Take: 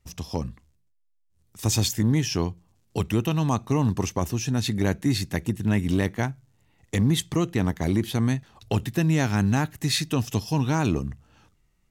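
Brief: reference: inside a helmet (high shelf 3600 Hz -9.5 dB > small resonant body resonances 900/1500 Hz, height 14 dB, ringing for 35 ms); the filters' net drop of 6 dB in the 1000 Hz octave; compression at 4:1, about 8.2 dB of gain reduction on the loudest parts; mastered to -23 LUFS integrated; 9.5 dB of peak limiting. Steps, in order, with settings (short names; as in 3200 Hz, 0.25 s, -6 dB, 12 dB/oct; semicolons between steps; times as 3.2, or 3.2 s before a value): bell 1000 Hz -7 dB; compressor 4:1, threshold -28 dBFS; limiter -26.5 dBFS; high shelf 3600 Hz -9.5 dB; small resonant body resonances 900/1500 Hz, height 14 dB, ringing for 35 ms; gain +14 dB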